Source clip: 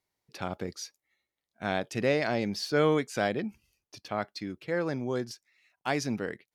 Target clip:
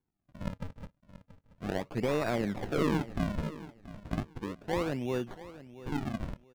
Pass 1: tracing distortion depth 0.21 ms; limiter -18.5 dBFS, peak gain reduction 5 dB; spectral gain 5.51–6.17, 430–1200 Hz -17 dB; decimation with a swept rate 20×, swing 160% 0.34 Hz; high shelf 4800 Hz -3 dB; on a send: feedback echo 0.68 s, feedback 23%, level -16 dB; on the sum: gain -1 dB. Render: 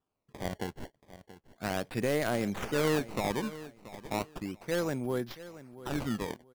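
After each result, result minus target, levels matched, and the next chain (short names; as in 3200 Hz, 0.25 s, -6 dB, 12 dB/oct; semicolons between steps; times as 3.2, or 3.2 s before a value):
8000 Hz band +8.0 dB; decimation with a swept rate: distortion -9 dB
tracing distortion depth 0.21 ms; limiter -18.5 dBFS, peak gain reduction 5 dB; spectral gain 5.51–6.17, 430–1200 Hz -17 dB; decimation with a swept rate 20×, swing 160% 0.34 Hz; high shelf 4800 Hz -14 dB; on a send: feedback echo 0.68 s, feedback 23%, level -16 dB; on the sum: gain -1 dB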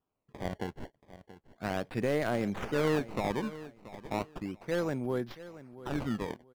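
decimation with a swept rate: distortion -9 dB
tracing distortion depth 0.21 ms; limiter -18.5 dBFS, peak gain reduction 5 dB; spectral gain 5.51–6.17, 430–1200 Hz -17 dB; decimation with a swept rate 68×, swing 160% 0.34 Hz; high shelf 4800 Hz -14 dB; on a send: feedback echo 0.68 s, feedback 23%, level -16 dB; on the sum: gain -1 dB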